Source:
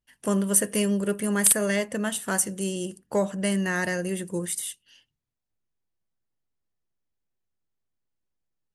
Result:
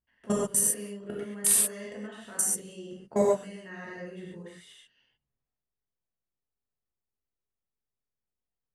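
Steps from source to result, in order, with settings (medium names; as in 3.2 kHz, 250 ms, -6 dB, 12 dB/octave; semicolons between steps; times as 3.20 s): level held to a coarse grid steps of 22 dB; level-controlled noise filter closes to 2 kHz, open at -27.5 dBFS; gated-style reverb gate 160 ms flat, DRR -5.5 dB; trim -3 dB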